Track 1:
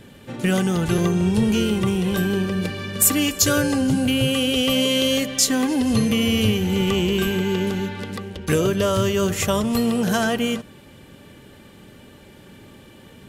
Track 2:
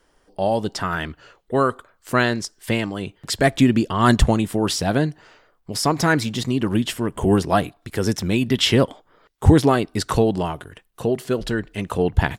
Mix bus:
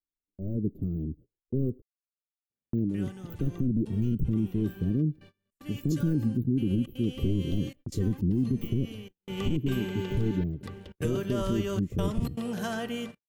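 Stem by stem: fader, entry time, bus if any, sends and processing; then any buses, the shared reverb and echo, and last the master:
0:09.06 −23 dB → 0:09.41 −11.5 dB, 2.50 s, no send, hum removal 90.78 Hz, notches 31; gate pattern "xxx.xxxxxxxx.." 155 BPM −24 dB
−7.0 dB, 0.00 s, muted 0:01.82–0:02.73, no send, wavefolder on the positive side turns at −16.5 dBFS; inverse Chebyshev band-stop filter 830–9,500 Hz, stop band 50 dB; automatic gain control gain up to 7 dB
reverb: not used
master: noise gate −46 dBFS, range −31 dB; parametric band 10,000 Hz −3.5 dB 2 octaves; brickwall limiter −18 dBFS, peak gain reduction 9.5 dB

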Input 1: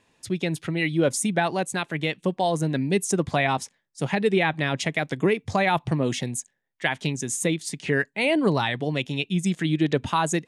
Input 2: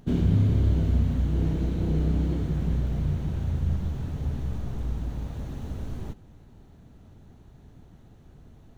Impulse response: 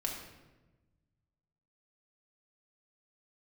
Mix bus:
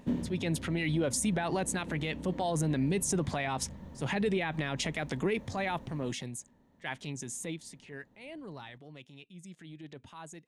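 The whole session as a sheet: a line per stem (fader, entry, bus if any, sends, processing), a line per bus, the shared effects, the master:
0:05.34 −2 dB → 0:05.64 −10.5 dB → 0:07.37 −10.5 dB → 0:08.11 −22.5 dB, 0.00 s, no send, transient designer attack −7 dB, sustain +3 dB
−3.5 dB, 0.00 s, no send, low-shelf EQ 330 Hz −8.5 dB; downward compressor, threshold −29 dBFS, peak gain reduction 6 dB; hollow resonant body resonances 240/530/920/1,800 Hz, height 13 dB, ringing for 25 ms; automatic ducking −11 dB, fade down 0.35 s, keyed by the first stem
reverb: not used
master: brickwall limiter −21.5 dBFS, peak gain reduction 10.5 dB

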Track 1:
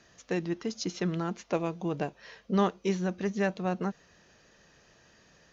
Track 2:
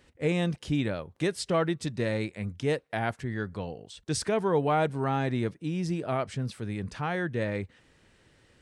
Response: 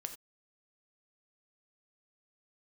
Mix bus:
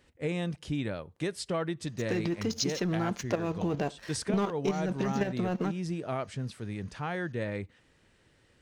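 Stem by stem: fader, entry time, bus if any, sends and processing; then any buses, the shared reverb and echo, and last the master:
+2.5 dB, 1.80 s, send −13 dB, leveller curve on the samples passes 2; output level in coarse steps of 10 dB
−4.0 dB, 0.00 s, send −19.5 dB, no processing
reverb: on, pre-delay 3 ms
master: downward compressor 6 to 1, threshold −26 dBFS, peak gain reduction 11 dB

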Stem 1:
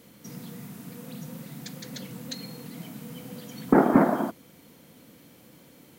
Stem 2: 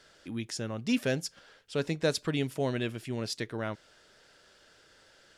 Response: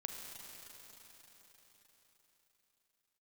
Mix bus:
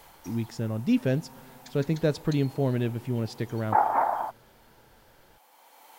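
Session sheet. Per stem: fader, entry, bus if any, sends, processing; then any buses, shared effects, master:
+2.5 dB, 0.00 s, no send, high-pass with resonance 840 Hz, resonance Q 6; automatic ducking −10 dB, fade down 0.50 s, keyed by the second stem
−1.5 dB, 0.00 s, send −17.5 dB, spectral tilt −3 dB per octave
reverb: on, RT60 4.6 s, pre-delay 34 ms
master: no processing

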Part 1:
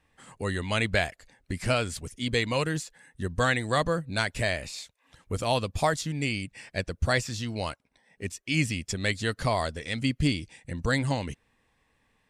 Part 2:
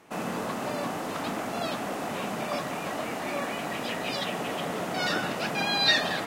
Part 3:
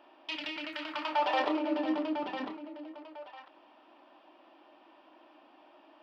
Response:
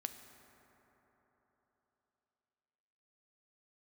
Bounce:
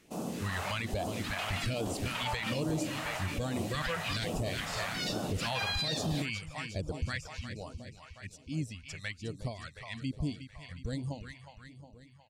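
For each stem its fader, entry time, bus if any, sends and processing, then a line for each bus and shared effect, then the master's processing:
0:06.78 −3 dB → 0:07.21 −13 dB, 0.00 s, no send, echo send −10.5 dB, reverb reduction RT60 1.4 s; high-shelf EQ 4,300 Hz −9 dB
−2.0 dB, 0.00 s, no send, no echo send, automatic ducking −6 dB, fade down 0.85 s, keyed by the first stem
−9.0 dB, 1.10 s, no send, no echo send, no processing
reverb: not used
echo: repeating echo 361 ms, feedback 59%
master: automatic gain control gain up to 5.5 dB; all-pass phaser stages 2, 1.2 Hz, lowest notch 270–1,900 Hz; brickwall limiter −24 dBFS, peak gain reduction 11.5 dB

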